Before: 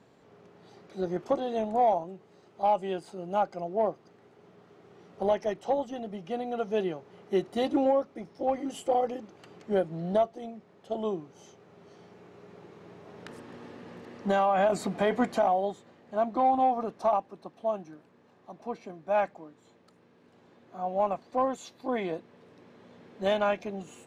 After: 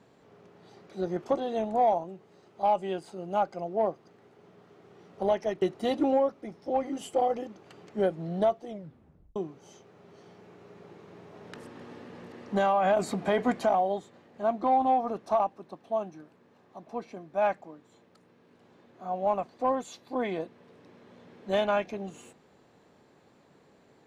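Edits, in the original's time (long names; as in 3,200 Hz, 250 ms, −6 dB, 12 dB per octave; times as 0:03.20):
0:05.62–0:07.35: remove
0:10.42: tape stop 0.67 s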